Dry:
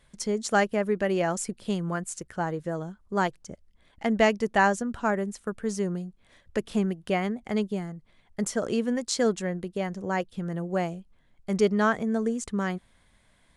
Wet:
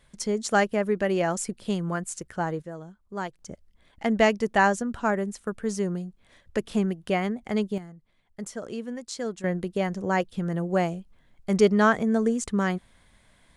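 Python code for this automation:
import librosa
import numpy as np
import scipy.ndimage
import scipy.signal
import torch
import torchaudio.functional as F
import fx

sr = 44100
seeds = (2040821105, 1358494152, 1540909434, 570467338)

y = fx.gain(x, sr, db=fx.steps((0.0, 1.0), (2.62, -7.0), (3.39, 1.0), (7.78, -7.5), (9.44, 3.5)))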